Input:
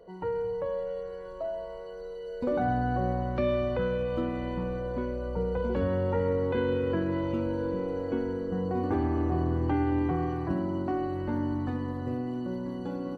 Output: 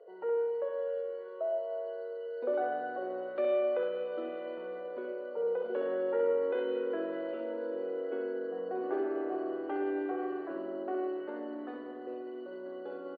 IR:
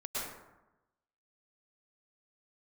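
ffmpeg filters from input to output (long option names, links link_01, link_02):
-filter_complex "[0:a]highpass=frequency=380:width=0.5412,highpass=frequency=380:width=1.3066,equalizer=frequency=410:width_type=q:width=4:gain=8,equalizer=frequency=640:width_type=q:width=4:gain=6,equalizer=frequency=960:width_type=q:width=4:gain=-6,equalizer=frequency=1400:width_type=q:width=4:gain=3,equalizer=frequency=2200:width_type=q:width=4:gain=-4,lowpass=frequency=3500:width=0.5412,lowpass=frequency=3500:width=1.3066,aecho=1:1:64.14|107.9:0.501|0.251,asplit=2[link_01][link_02];[1:a]atrim=start_sample=2205,lowpass=3200[link_03];[link_02][link_03]afir=irnorm=-1:irlink=0,volume=-12dB[link_04];[link_01][link_04]amix=inputs=2:normalize=0,volume=-6.5dB"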